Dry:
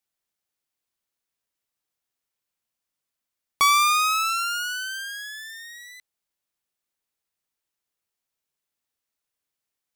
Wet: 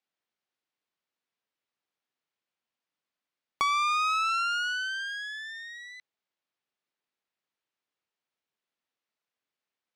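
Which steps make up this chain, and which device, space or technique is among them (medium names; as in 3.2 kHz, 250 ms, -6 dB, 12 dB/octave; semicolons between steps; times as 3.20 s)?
AM radio (band-pass 160–3900 Hz; compression 6:1, threshold -23 dBFS, peak gain reduction 7.5 dB; saturation -17 dBFS, distortion -25 dB)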